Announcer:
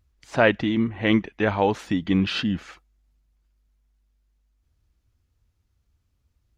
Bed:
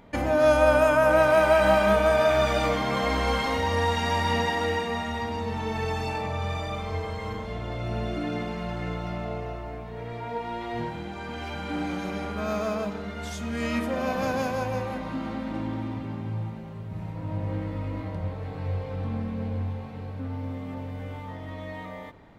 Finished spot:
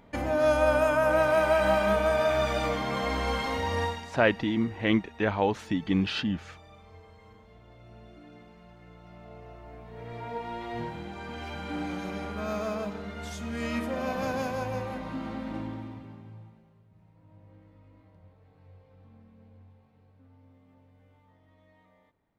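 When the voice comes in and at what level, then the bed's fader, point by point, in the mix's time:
3.80 s, -4.5 dB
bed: 3.84 s -4 dB
4.13 s -20.5 dB
8.87 s -20.5 dB
10.19 s -3.5 dB
15.56 s -3.5 dB
16.92 s -24.5 dB

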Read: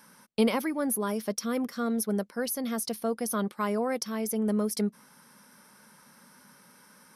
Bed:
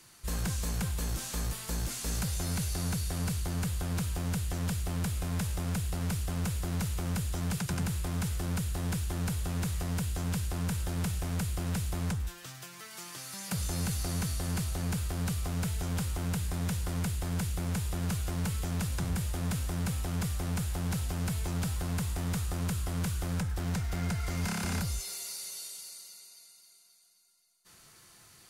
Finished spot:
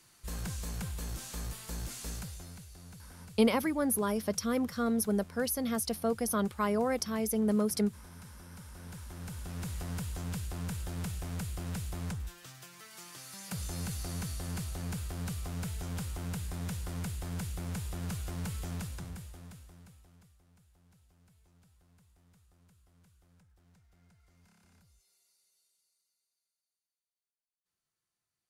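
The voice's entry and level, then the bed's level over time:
3.00 s, -1.0 dB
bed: 2.06 s -5.5 dB
2.66 s -18.5 dB
8.50 s -18.5 dB
9.77 s -5 dB
18.73 s -5 dB
20.43 s -33 dB

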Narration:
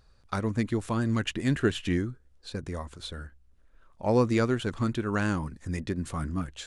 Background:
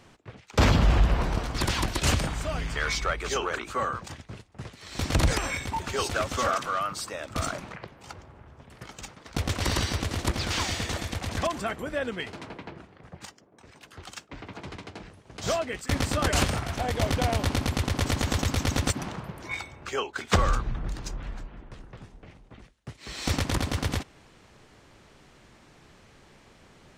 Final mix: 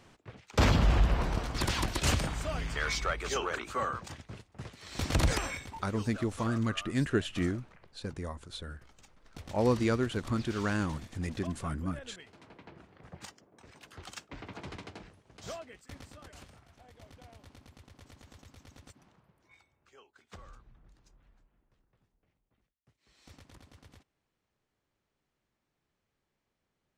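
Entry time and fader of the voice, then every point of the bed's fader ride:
5.50 s, -3.5 dB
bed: 5.41 s -4 dB
5.89 s -18 dB
12.26 s -18 dB
13.06 s -3.5 dB
14.85 s -3.5 dB
16.38 s -28.5 dB

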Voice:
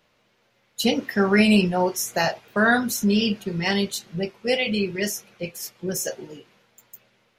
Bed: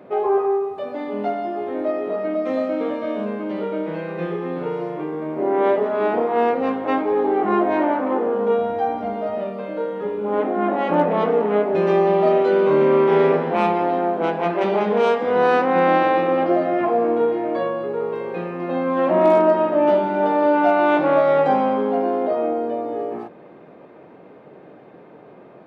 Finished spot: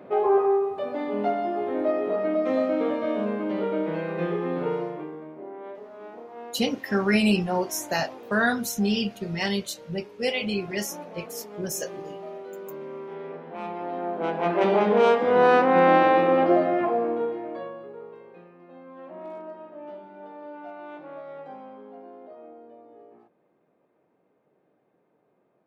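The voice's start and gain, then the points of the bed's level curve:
5.75 s, -4.0 dB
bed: 4.74 s -1.5 dB
5.61 s -22 dB
13.23 s -22 dB
14.61 s -1 dB
16.54 s -1 dB
18.65 s -24 dB

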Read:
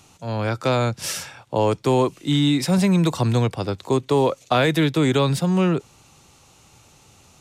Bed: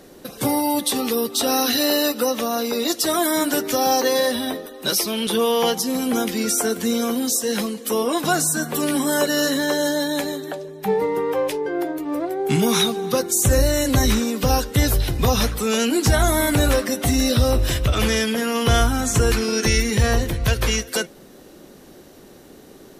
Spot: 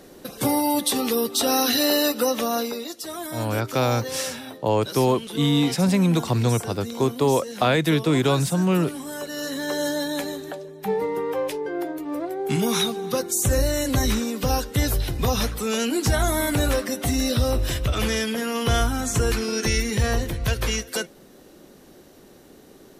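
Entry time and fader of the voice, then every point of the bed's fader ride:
3.10 s, -1.5 dB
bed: 2.59 s -1 dB
2.90 s -13 dB
9.24 s -13 dB
9.81 s -4 dB

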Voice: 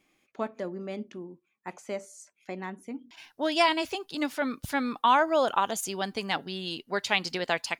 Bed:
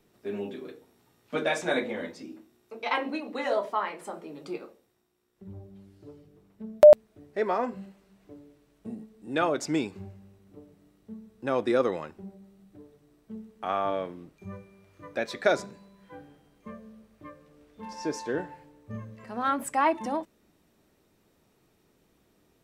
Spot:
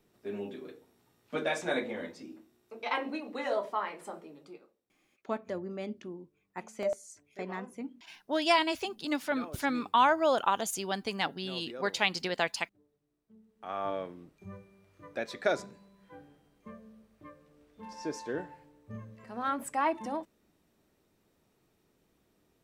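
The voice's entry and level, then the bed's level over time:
4.90 s, -2.0 dB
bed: 4.15 s -4 dB
4.73 s -19 dB
13.33 s -19 dB
13.86 s -5 dB

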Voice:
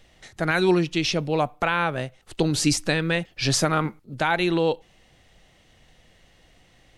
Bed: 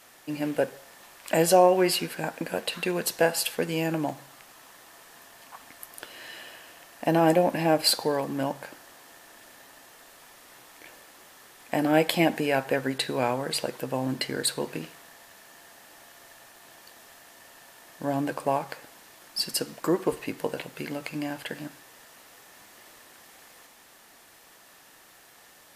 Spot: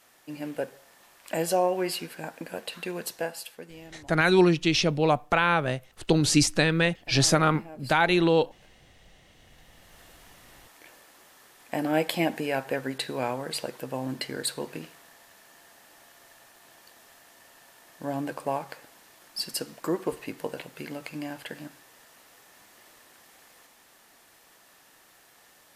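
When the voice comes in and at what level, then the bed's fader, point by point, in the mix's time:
3.70 s, +0.5 dB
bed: 3.05 s -6 dB
4.04 s -22.5 dB
9.20 s -22.5 dB
10.00 s -3.5 dB

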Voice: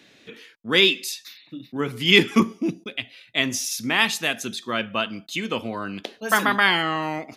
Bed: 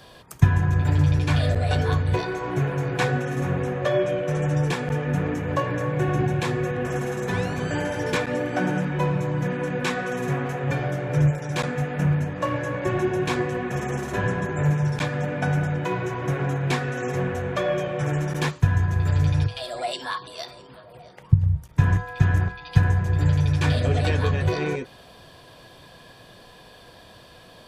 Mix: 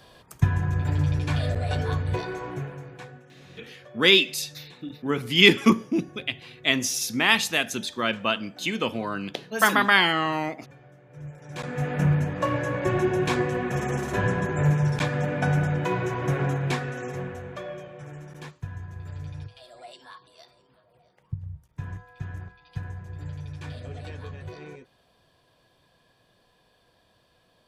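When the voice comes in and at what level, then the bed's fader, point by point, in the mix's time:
3.30 s, 0.0 dB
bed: 2.41 s -4.5 dB
3.27 s -25.5 dB
11.10 s -25.5 dB
11.87 s 0 dB
16.44 s 0 dB
18.07 s -16.5 dB

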